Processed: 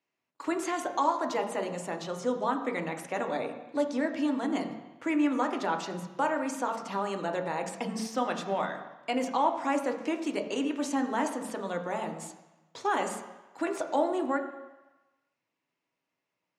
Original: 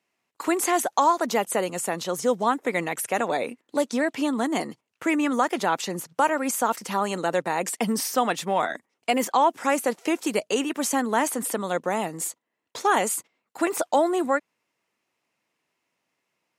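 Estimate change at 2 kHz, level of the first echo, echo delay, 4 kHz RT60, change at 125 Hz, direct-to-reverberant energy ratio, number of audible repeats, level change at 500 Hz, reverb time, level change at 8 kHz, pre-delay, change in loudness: −7.5 dB, no echo audible, no echo audible, 1.2 s, −4.5 dB, 4.0 dB, no echo audible, −6.0 dB, 1.1 s, −14.0 dB, 3 ms, −6.0 dB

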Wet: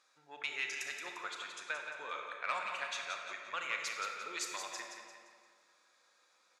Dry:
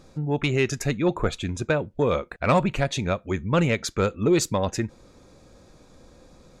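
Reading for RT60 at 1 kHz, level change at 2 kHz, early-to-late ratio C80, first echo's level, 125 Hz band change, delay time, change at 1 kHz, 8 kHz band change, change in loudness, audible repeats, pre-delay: 1.9 s, −7.0 dB, 2.5 dB, −7.5 dB, below −40 dB, 174 ms, −12.0 dB, −10.5 dB, −15.0 dB, 4, 27 ms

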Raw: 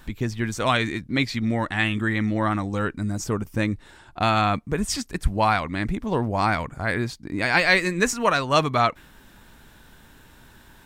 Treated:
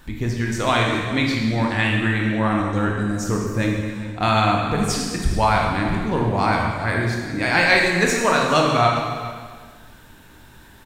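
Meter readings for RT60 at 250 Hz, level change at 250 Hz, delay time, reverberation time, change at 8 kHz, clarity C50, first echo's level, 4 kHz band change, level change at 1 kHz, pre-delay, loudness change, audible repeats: 1.7 s, +4.0 dB, 404 ms, 1.6 s, +3.0 dB, 1.5 dB, −16.0 dB, +3.5 dB, +3.5 dB, 18 ms, +3.5 dB, 1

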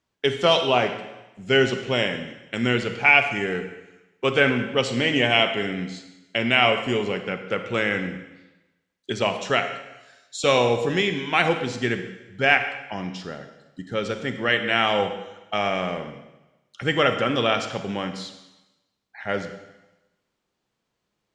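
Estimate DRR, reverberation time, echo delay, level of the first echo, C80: 8.0 dB, 1.0 s, no echo audible, no echo audible, 10.5 dB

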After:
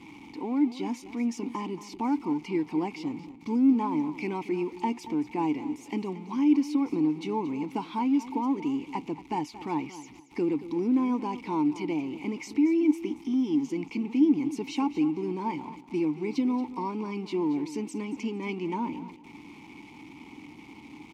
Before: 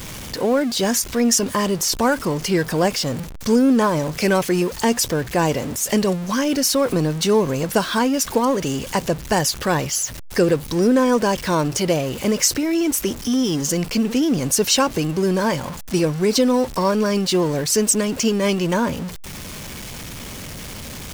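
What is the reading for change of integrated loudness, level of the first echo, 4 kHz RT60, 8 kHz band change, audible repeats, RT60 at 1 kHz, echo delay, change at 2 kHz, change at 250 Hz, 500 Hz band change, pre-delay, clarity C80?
−9.5 dB, −14.5 dB, no reverb audible, below −25 dB, 2, no reverb audible, 228 ms, −16.0 dB, −6.0 dB, −15.0 dB, no reverb audible, no reverb audible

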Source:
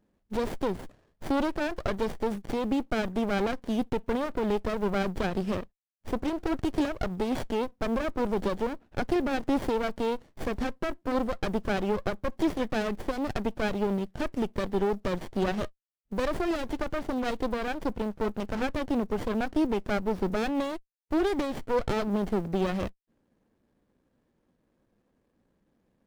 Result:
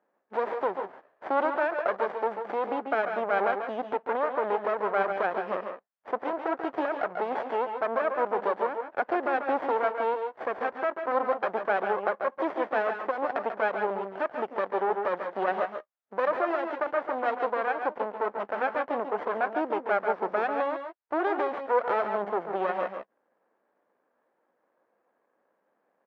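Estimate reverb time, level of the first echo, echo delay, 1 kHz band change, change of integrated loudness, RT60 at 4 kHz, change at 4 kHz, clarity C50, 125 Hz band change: no reverb audible, −8.0 dB, 140 ms, +7.0 dB, +1.0 dB, no reverb audible, −9.0 dB, no reverb audible, below −15 dB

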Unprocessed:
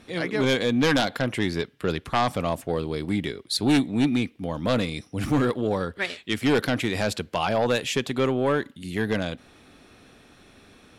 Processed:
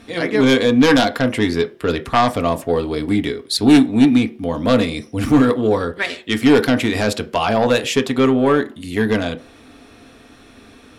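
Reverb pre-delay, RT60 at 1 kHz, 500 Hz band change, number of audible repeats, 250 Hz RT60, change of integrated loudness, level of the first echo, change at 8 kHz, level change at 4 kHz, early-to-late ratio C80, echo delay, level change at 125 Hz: 3 ms, 0.40 s, +8.0 dB, no echo audible, 0.45 s, +8.5 dB, no echo audible, +6.0 dB, +6.0 dB, 23.5 dB, no echo audible, +5.0 dB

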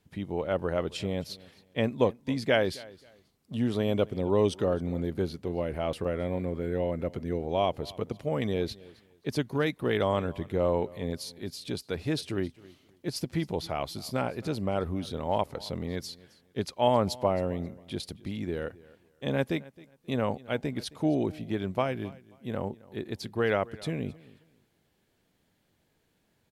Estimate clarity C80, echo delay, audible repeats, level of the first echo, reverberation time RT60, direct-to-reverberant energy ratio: no reverb audible, 267 ms, 2, −21.5 dB, no reverb audible, no reverb audible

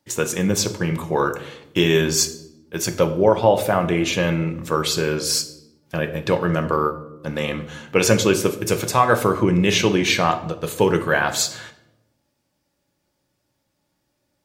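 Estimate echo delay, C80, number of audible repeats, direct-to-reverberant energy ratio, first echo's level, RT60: no echo audible, 16.0 dB, no echo audible, 7.5 dB, no echo audible, 0.90 s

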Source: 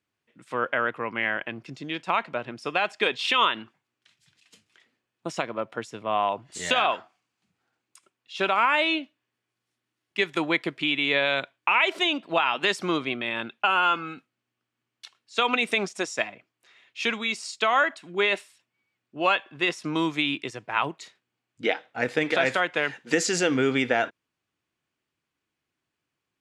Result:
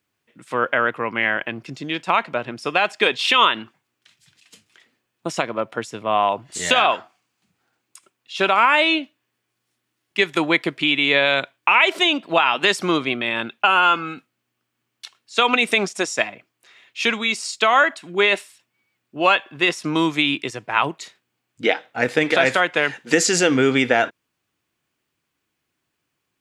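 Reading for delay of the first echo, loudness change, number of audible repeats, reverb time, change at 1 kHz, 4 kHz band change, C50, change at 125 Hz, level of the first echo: no echo audible, +6.5 dB, no echo audible, no reverb audible, +6.0 dB, +6.5 dB, no reverb audible, +6.0 dB, no echo audible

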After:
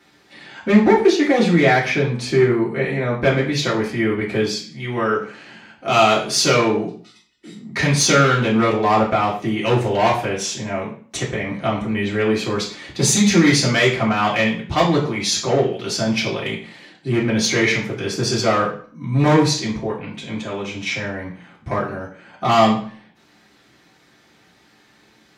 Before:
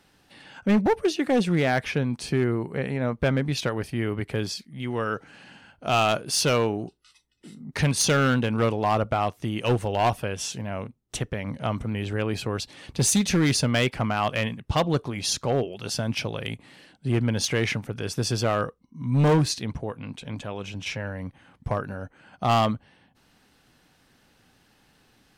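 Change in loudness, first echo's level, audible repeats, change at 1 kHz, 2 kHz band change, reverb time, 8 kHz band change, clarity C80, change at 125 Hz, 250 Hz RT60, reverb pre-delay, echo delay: +7.0 dB, no echo audible, no echo audible, +7.5 dB, +9.0 dB, 0.45 s, +6.0 dB, 12.0 dB, +3.5 dB, 0.50 s, 3 ms, no echo audible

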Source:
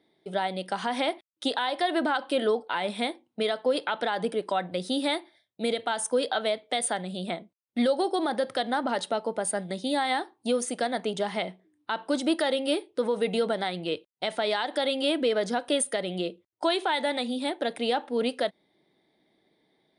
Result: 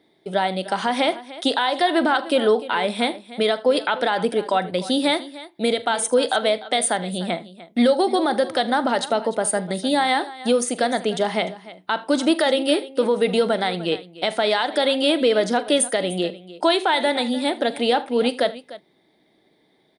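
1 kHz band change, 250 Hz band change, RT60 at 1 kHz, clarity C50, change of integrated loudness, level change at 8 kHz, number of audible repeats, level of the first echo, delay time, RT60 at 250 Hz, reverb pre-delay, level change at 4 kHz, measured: +7.0 dB, +7.5 dB, no reverb audible, no reverb audible, +7.0 dB, +7.0 dB, 3, −18.0 dB, 42 ms, no reverb audible, no reverb audible, +7.0 dB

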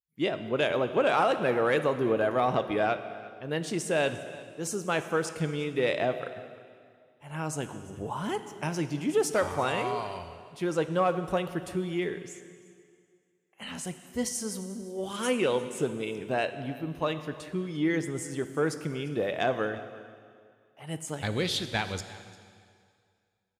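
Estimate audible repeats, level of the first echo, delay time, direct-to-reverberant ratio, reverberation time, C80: 1, −20.5 dB, 348 ms, 9.5 dB, 2.1 s, 11.5 dB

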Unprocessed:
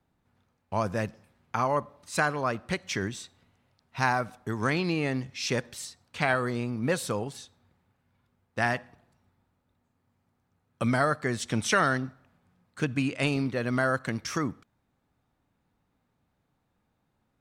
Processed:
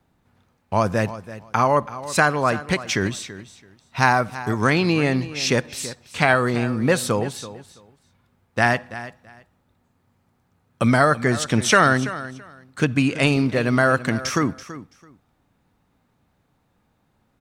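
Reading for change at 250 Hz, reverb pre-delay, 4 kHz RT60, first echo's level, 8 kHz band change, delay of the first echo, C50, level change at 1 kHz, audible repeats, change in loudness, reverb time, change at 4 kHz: +8.5 dB, no reverb audible, no reverb audible, −15.0 dB, +8.5 dB, 332 ms, no reverb audible, +8.5 dB, 2, +8.5 dB, no reverb audible, +8.5 dB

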